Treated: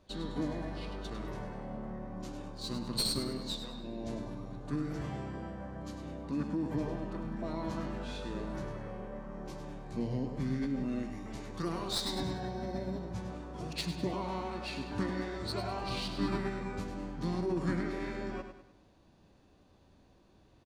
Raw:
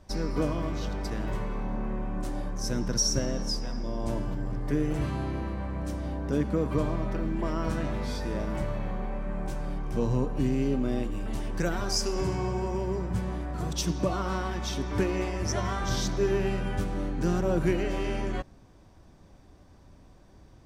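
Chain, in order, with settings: tracing distortion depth 0.029 ms; low shelf 110 Hz -12 dB; feedback echo 0.101 s, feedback 42%, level -8.5 dB; formant shift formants -5 st; gain -5 dB

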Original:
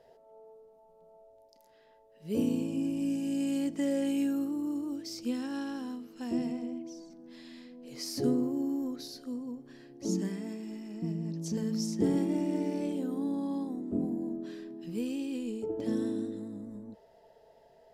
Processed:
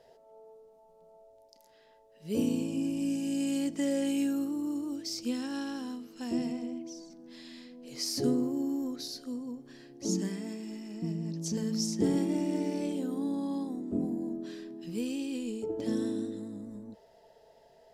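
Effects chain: bell 6100 Hz +5.5 dB 2.2 oct

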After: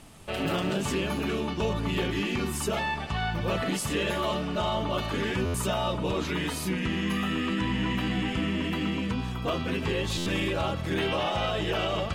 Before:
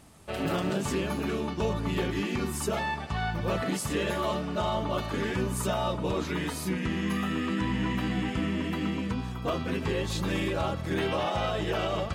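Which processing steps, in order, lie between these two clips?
bell 2900 Hz +5 dB 0.67 oct; in parallel at -1.5 dB: limiter -28.5 dBFS, peak gain reduction 11 dB; on the sum: added noise brown -54 dBFS; stuck buffer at 5.45/10.17, samples 512, times 7; gain -2 dB

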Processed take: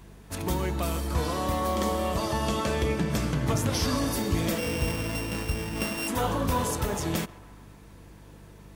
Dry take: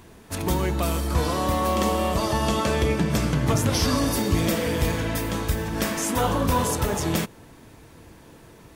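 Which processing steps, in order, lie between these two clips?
4.58–6.08 sample sorter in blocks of 16 samples; narrowing echo 0.139 s, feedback 70%, band-pass 1100 Hz, level -18 dB; buzz 50 Hz, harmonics 4, -46 dBFS; 1.6–2.06 notch 2700 Hz, Q 10; gain -4.5 dB

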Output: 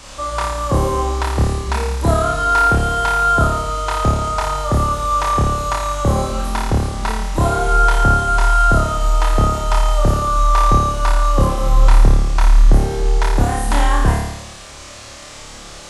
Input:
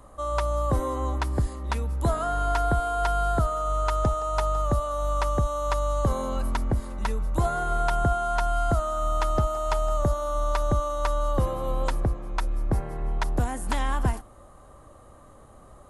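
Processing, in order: band noise 640–7900 Hz -49 dBFS; flutter echo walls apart 4.8 m, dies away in 0.9 s; gain +6 dB

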